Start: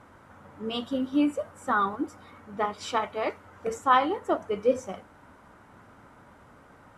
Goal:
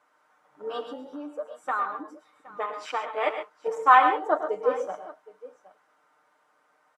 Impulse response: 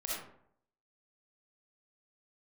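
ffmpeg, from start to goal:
-filter_complex "[0:a]afwtdn=0.0158,aecho=1:1:6.6:0.59,asettb=1/sr,asplit=3[a][b][c];[a]atrim=end=0.854[d];[b]atrim=start=0.85:end=3.08,asetpts=PTS-STARTPTS,afade=t=in:d=0.004:c=qsin,afade=t=out:st=2.226:d=0.004:c=qsin,acompressor=threshold=-29dB:ratio=6[e];[c]atrim=start=3.076[f];[d][e]acrossfade=d=0.004:c1=hsin:c2=qsin[g];[g][f]acrossfade=d=0.004:c1=qsin:c2=hsin,highpass=610,equalizer=f=5.6k:w=1.5:g=3,aecho=1:1:106|119|135|768:0.251|0.224|0.237|0.106,volume=4.5dB"

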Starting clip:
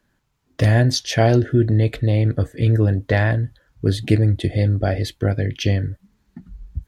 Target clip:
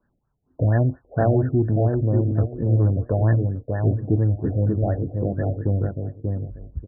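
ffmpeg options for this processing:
-filter_complex "[0:a]asplit=2[a][b];[b]adelay=587,lowpass=f=1.2k:p=1,volume=-4dB,asplit=2[c][d];[d]adelay=587,lowpass=f=1.2k:p=1,volume=0.21,asplit=2[e][f];[f]adelay=587,lowpass=f=1.2k:p=1,volume=0.21[g];[a][c][e][g]amix=inputs=4:normalize=0,acontrast=28,afftfilt=real='re*lt(b*sr/1024,740*pow(1900/740,0.5+0.5*sin(2*PI*4.3*pts/sr)))':imag='im*lt(b*sr/1024,740*pow(1900/740,0.5+0.5*sin(2*PI*4.3*pts/sr)))':win_size=1024:overlap=0.75,volume=-8dB"

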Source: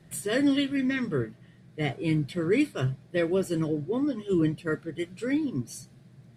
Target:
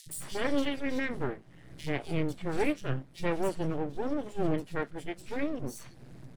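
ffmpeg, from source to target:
-filter_complex "[0:a]aeval=exprs='max(val(0),0)':c=same,acrossover=split=200|3700[a][b][c];[a]adelay=60[d];[b]adelay=90[e];[d][e][c]amix=inputs=3:normalize=0,acompressor=mode=upward:threshold=-36dB:ratio=2.5"

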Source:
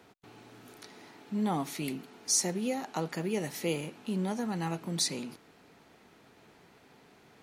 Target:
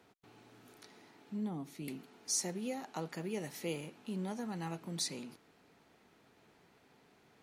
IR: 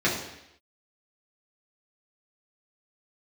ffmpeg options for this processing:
-filter_complex "[0:a]asettb=1/sr,asplit=3[a][b][c];[a]atrim=end=0.974[d];[b]atrim=start=0.97:end=1.88,asetpts=PTS-STARTPTS,afade=t=in:d=0.004:c=qsin,afade=t=out:st=0.906:d=0.004:c=qsin,acrossover=split=430[e][f];[f]acompressor=threshold=-53dB:ratio=2[g];[e][g]amix=inputs=2:normalize=0[h];[c]atrim=start=1.876[i];[d][h]acrossfade=d=0.004:c1=hsin:c2=qsin[j];[j][i]acrossfade=d=0.004:c1=qsin:c2=hsin,volume=-7dB"

